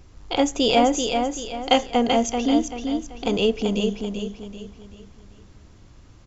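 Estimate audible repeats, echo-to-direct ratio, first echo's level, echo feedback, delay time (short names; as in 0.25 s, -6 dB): 4, -5.0 dB, -5.5 dB, 38%, 0.386 s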